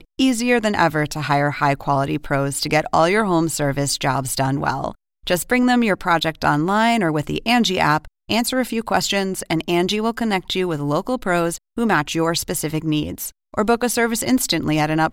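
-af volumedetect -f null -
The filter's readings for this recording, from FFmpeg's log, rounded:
mean_volume: -19.6 dB
max_volume: -4.3 dB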